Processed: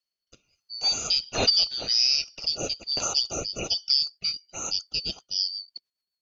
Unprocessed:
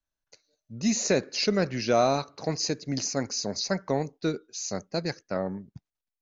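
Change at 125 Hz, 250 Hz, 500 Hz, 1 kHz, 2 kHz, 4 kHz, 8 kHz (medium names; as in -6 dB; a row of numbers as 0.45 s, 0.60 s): -10.0 dB, -13.5 dB, -10.0 dB, -7.5 dB, -2.5 dB, +12.0 dB, no reading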